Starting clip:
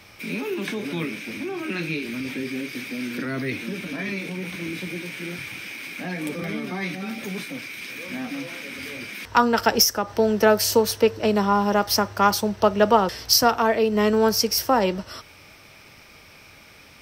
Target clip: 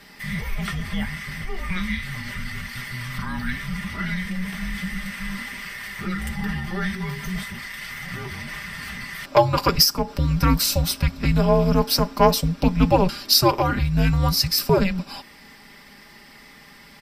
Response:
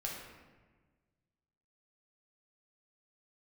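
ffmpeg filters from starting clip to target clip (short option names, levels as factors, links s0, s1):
-af "afreqshift=-370,aecho=1:1:5:0.66"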